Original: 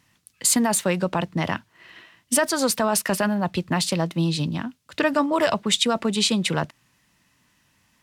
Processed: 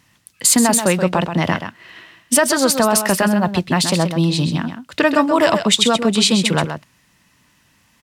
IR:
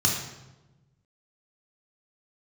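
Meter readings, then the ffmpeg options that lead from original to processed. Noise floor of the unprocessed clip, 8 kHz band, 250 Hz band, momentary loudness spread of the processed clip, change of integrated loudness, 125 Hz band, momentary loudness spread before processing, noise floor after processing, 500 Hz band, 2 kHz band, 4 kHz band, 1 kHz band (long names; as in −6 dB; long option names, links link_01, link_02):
−65 dBFS, +6.5 dB, +6.5 dB, 8 LU, +6.5 dB, +6.5 dB, 8 LU, −58 dBFS, +6.5 dB, +6.5 dB, +6.5 dB, +6.5 dB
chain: -af "aecho=1:1:130:0.376,volume=6dB"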